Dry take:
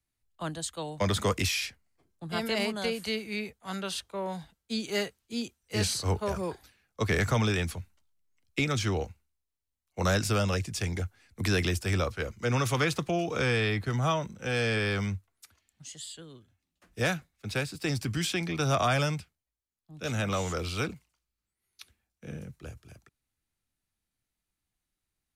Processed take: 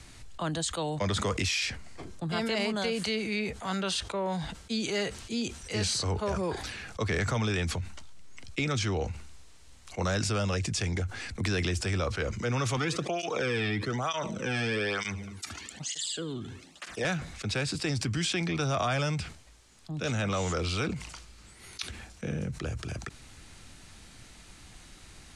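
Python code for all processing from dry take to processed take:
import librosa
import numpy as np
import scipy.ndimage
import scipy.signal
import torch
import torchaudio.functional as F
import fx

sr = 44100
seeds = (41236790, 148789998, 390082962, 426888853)

y = fx.chain(x, sr, fx.echo_feedback(ms=75, feedback_pct=38, wet_db=-22.5),
    fx.flanger_cancel(hz=1.1, depth_ms=2.1), at=(12.77, 17.05))
y = scipy.signal.sosfilt(scipy.signal.butter(4, 8700.0, 'lowpass', fs=sr, output='sos'), y)
y = fx.env_flatten(y, sr, amount_pct=70)
y = F.gain(torch.from_numpy(y), -4.5).numpy()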